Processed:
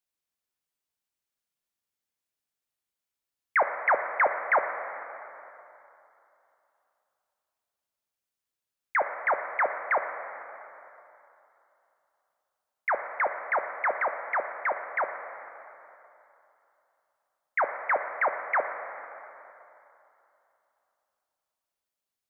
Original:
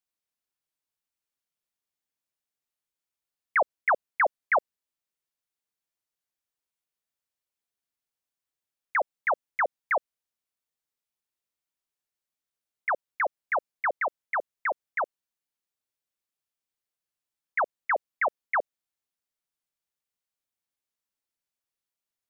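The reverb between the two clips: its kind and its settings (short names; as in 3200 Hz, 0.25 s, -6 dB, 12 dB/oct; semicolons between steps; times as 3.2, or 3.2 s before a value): plate-style reverb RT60 3 s, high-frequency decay 0.7×, DRR 6 dB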